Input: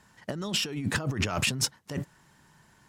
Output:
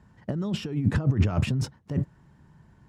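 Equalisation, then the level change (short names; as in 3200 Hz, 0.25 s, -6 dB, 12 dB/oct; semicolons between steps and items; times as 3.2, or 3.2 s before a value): HPF 48 Hz; tilt -4 dB/oct; -3.0 dB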